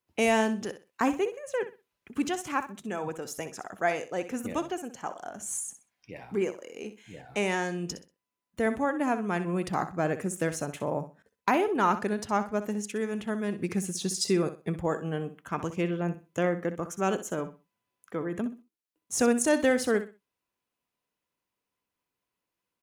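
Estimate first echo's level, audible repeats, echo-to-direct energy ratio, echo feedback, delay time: −12.0 dB, 2, −11.5 dB, 24%, 63 ms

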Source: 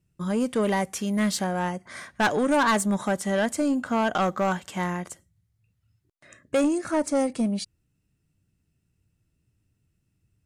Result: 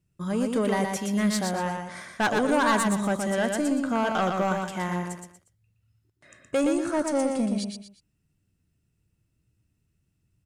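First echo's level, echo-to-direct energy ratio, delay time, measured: −4.5 dB, −4.0 dB, 119 ms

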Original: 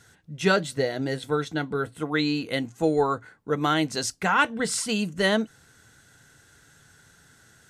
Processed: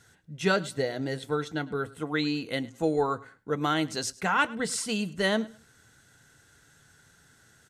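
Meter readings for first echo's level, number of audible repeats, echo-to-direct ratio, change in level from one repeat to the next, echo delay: −21.0 dB, 2, −21.0 dB, −13.0 dB, 104 ms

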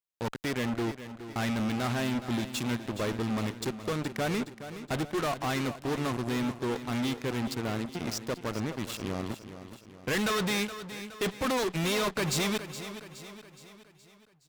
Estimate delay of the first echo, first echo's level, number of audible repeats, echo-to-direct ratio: 419 ms, −12.0 dB, 4, −11.0 dB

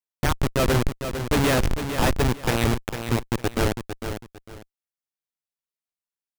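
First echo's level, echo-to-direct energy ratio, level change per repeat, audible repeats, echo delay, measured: −8.5 dB, −8.0 dB, −11.5 dB, 2, 452 ms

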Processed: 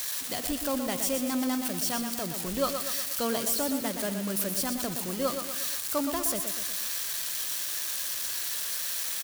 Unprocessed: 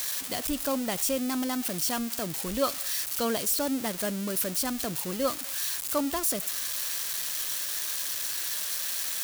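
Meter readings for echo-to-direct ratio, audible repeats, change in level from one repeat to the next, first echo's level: −6.0 dB, 4, −5.5 dB, −7.5 dB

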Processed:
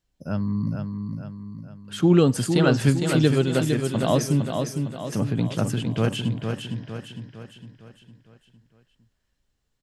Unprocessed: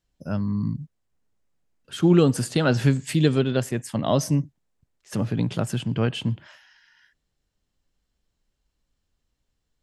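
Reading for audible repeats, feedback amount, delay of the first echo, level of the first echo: 5, 48%, 457 ms, −5.5 dB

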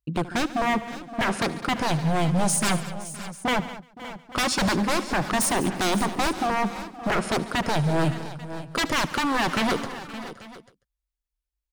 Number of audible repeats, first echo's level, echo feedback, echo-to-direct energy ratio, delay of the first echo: 8, −17.5 dB, repeats not evenly spaced, −9.5 dB, 74 ms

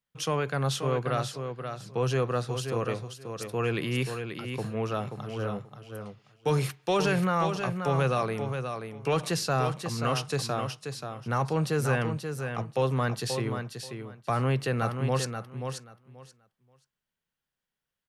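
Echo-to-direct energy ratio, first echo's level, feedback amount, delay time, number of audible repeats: −7.0 dB, −7.0 dB, 18%, 532 ms, 2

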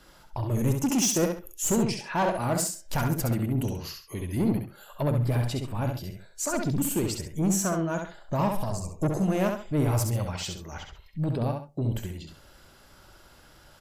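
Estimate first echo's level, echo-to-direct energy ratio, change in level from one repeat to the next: −5.0 dB, −4.5 dB, −10.5 dB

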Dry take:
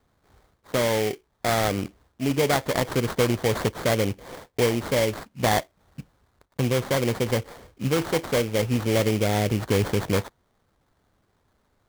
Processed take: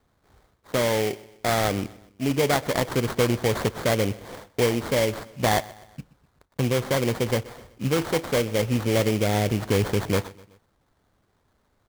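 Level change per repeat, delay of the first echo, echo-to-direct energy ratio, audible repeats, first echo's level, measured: −6.5 dB, 126 ms, −19.5 dB, 3, −20.5 dB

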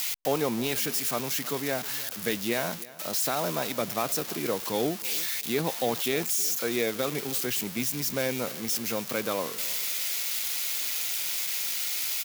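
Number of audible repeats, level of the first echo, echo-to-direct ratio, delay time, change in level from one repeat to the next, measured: 2, −19.0 dB, −18.5 dB, 313 ms, −11.5 dB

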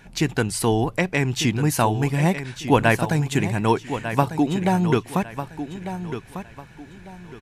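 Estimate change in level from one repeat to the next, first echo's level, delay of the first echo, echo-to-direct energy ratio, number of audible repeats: −11.0 dB, −10.5 dB, 1,198 ms, −10.0 dB, 3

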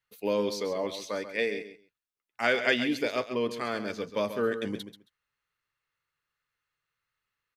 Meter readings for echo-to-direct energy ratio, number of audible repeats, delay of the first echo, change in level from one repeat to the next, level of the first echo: −11.0 dB, 2, 135 ms, −16.0 dB, −11.0 dB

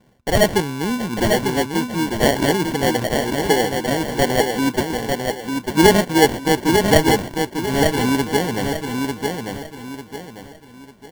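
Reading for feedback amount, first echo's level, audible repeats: 34%, −4.5 dB, 4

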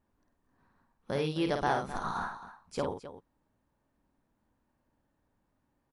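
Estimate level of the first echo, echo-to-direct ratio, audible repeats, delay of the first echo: −5.5 dB, −5.0 dB, 2, 51 ms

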